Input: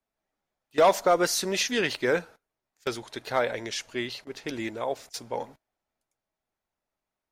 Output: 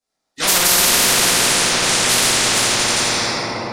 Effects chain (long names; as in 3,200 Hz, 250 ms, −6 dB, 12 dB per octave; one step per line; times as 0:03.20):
flat-topped bell 6,100 Hz +11.5 dB
echo machine with several playback heads 166 ms, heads first and second, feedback 73%, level −18 dB
downward expander −39 dBFS
high-pass filter 87 Hz 6 dB per octave
volume swells 424 ms
phase-vocoder stretch with locked phases 0.51×
rectangular room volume 150 cubic metres, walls hard, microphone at 2.1 metres
boost into a limiter +7 dB
every bin compressed towards the loudest bin 10 to 1
level −1 dB